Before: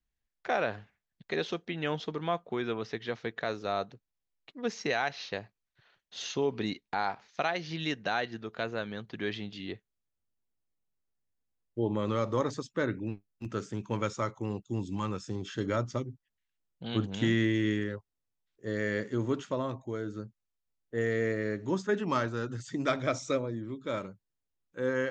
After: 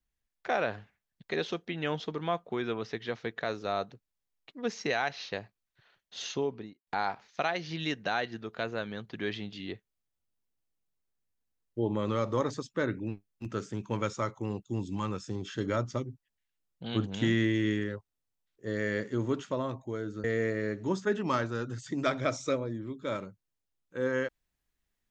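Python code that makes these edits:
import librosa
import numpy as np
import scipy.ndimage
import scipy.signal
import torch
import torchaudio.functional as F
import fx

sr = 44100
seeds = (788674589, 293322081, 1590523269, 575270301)

y = fx.studio_fade_out(x, sr, start_s=6.26, length_s=0.61)
y = fx.edit(y, sr, fx.cut(start_s=20.24, length_s=0.82), tone=tone)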